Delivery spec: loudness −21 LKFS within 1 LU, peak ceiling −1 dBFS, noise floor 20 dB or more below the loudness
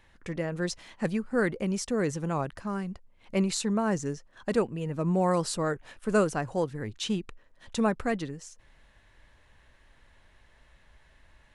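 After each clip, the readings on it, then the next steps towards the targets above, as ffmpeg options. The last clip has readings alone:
integrated loudness −30.0 LKFS; sample peak −11.0 dBFS; target loudness −21.0 LKFS
→ -af "volume=9dB"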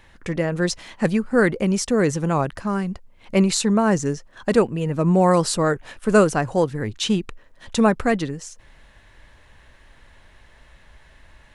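integrated loudness −21.0 LKFS; sample peak −2.0 dBFS; background noise floor −52 dBFS

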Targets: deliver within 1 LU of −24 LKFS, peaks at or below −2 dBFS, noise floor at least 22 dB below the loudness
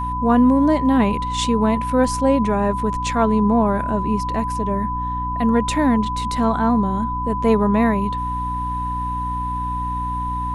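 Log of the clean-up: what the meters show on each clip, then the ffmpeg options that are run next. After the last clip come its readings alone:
mains hum 60 Hz; hum harmonics up to 300 Hz; level of the hum −25 dBFS; interfering tone 1,000 Hz; level of the tone −23 dBFS; integrated loudness −19.5 LKFS; sample peak −4.0 dBFS; target loudness −24.0 LKFS
→ -af "bandreject=frequency=60:width_type=h:width=6,bandreject=frequency=120:width_type=h:width=6,bandreject=frequency=180:width_type=h:width=6,bandreject=frequency=240:width_type=h:width=6,bandreject=frequency=300:width_type=h:width=6"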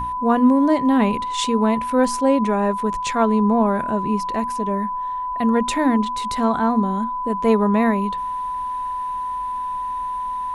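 mains hum none found; interfering tone 1,000 Hz; level of the tone −23 dBFS
→ -af "bandreject=frequency=1000:width=30"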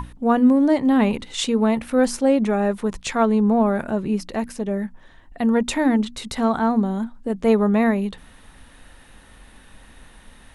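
interfering tone none found; integrated loudness −20.5 LKFS; sample peak −6.0 dBFS; target loudness −24.0 LKFS
→ -af "volume=-3.5dB"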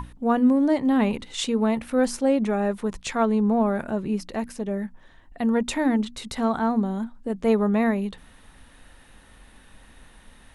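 integrated loudness −24.0 LKFS; sample peak −9.5 dBFS; background noise floor −52 dBFS

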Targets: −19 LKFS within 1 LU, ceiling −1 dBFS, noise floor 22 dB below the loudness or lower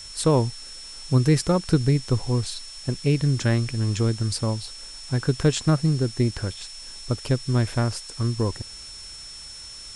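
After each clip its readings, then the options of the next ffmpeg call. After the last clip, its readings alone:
interfering tone 5,400 Hz; level of the tone −39 dBFS; background noise floor −40 dBFS; target noise floor −46 dBFS; integrated loudness −24.0 LKFS; sample peak −8.0 dBFS; target loudness −19.0 LKFS
→ -af "bandreject=frequency=5400:width=30"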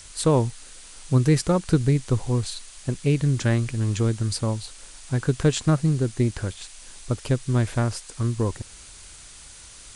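interfering tone none found; background noise floor −45 dBFS; target noise floor −46 dBFS
→ -af "afftdn=noise_reduction=6:noise_floor=-45"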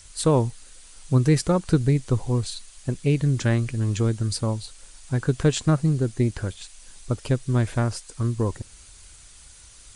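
background noise floor −49 dBFS; integrated loudness −24.0 LKFS; sample peak −8.0 dBFS; target loudness −19.0 LKFS
→ -af "volume=5dB"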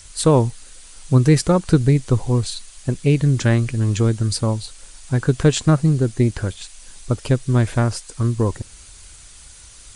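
integrated loudness −19.0 LKFS; sample peak −3.0 dBFS; background noise floor −44 dBFS

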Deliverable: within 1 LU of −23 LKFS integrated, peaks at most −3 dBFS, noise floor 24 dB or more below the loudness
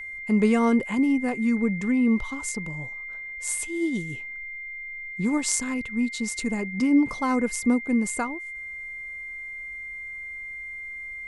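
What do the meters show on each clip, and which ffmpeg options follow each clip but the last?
interfering tone 2,100 Hz; level of the tone −34 dBFS; integrated loudness −26.5 LKFS; sample peak −6.0 dBFS; target loudness −23.0 LKFS
→ -af "bandreject=frequency=2100:width=30"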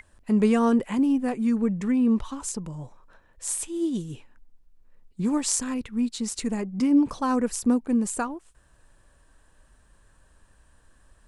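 interfering tone none found; integrated loudness −25.0 LKFS; sample peak −6.5 dBFS; target loudness −23.0 LKFS
→ -af "volume=2dB"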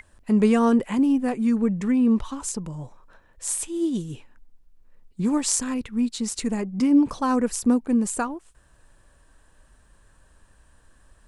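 integrated loudness −23.0 LKFS; sample peak −4.5 dBFS; background noise floor −58 dBFS

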